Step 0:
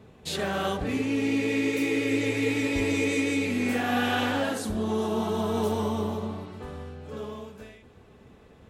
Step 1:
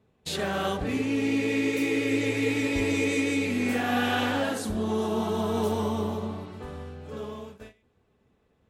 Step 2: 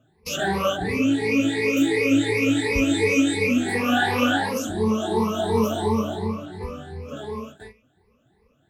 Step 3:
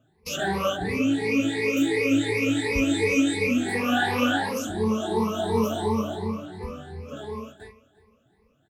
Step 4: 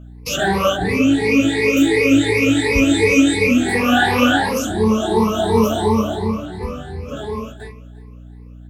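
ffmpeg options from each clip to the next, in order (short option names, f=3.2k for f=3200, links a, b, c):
-af "agate=range=-15dB:threshold=-44dB:ratio=16:detection=peak"
-af "afftfilt=real='re*pow(10,23/40*sin(2*PI*(0.87*log(max(b,1)*sr/1024/100)/log(2)-(2.8)*(pts-256)/sr)))':imag='im*pow(10,23/40*sin(2*PI*(0.87*log(max(b,1)*sr/1024/100)/log(2)-(2.8)*(pts-256)/sr)))':win_size=1024:overlap=0.75"
-af "aecho=1:1:351|702|1053:0.106|0.0381|0.0137,volume=-2.5dB"
-af "aeval=exprs='val(0)+0.00562*(sin(2*PI*60*n/s)+sin(2*PI*2*60*n/s)/2+sin(2*PI*3*60*n/s)/3+sin(2*PI*4*60*n/s)/4+sin(2*PI*5*60*n/s)/5)':c=same,volume=8.5dB"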